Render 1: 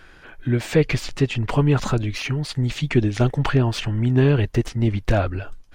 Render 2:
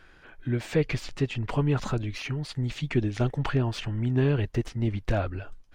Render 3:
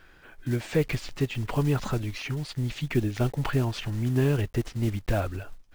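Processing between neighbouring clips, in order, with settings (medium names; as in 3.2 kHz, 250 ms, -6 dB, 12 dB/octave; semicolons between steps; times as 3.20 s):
treble shelf 7.2 kHz -4.5 dB; trim -7 dB
block-companded coder 5-bit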